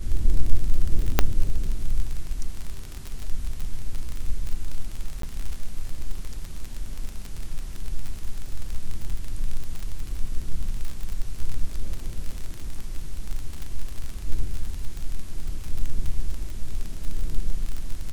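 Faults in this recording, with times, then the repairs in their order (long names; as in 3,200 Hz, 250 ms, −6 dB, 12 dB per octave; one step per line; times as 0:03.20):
surface crackle 37 per second −26 dBFS
0:01.19: click −2 dBFS
0:05.22–0:05.23: drop-out 13 ms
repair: click removal
repair the gap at 0:05.22, 13 ms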